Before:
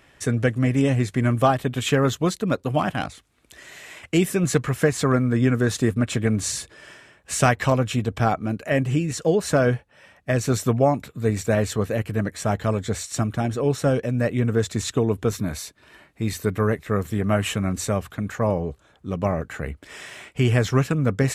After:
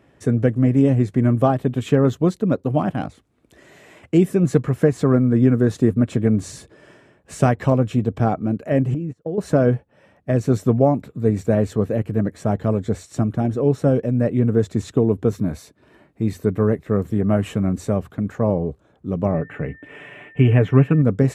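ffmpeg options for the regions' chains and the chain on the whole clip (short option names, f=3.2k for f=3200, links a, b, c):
-filter_complex "[0:a]asettb=1/sr,asplit=3[a][b][c];[a]atrim=end=8.944[d];[b]atrim=start=8.94:end=9.38,asetpts=PTS-STARTPTS,afade=t=in:d=0.004:c=qsin,afade=t=out:st=0.436:d=0.004:c=qsin,agate=range=-24dB:threshold=-27dB:ratio=16:release=100:detection=peak,highshelf=f=2.4k:g=-11,acompressor=threshold=-29dB:ratio=3:attack=3.2:release=140:knee=1:detection=peak[e];[c]atrim=start=9.376[f];[d][e]acrossfade=d=0.004:c1=hsin:c2=qsin[g];[g][f]acrossfade=d=0.004:c1=qsin:c2=hsin,asettb=1/sr,asplit=3[h][i][j];[h]atrim=end=19.344[k];[i]atrim=start=19.34:end=21.02,asetpts=PTS-STARTPTS,afade=t=in:d=0.004:c=qsin,afade=t=out:st=1.676:d=0.004:c=qsin,highshelf=f=3.6k:t=q:w=3:g=-10,aecho=1:1:6.9:0.45,atrim=end_sample=74088,aeval=exprs='val(0)+0.0141*sin(2*PI*1800*n/s)':c=same[l];[j]atrim=start=21.016[m];[k][l]acrossfade=d=0.004:c1=hsin:c2=qsin[n];[n][m]acrossfade=d=0.004:c1=qsin:c2=hsin,highpass=f=190:p=1,tiltshelf=f=840:g=10,volume=-1dB"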